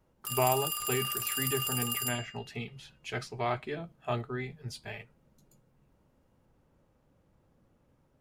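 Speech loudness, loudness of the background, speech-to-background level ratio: -35.5 LUFS, -32.0 LUFS, -3.5 dB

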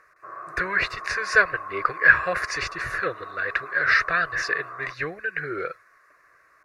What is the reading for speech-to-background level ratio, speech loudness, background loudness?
14.0 dB, -23.5 LUFS, -37.5 LUFS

